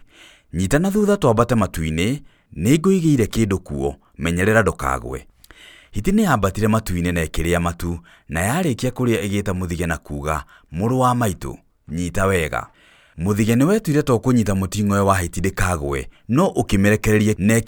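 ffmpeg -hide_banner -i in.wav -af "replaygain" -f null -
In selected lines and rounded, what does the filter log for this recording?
track_gain = -0.2 dB
track_peak = 0.578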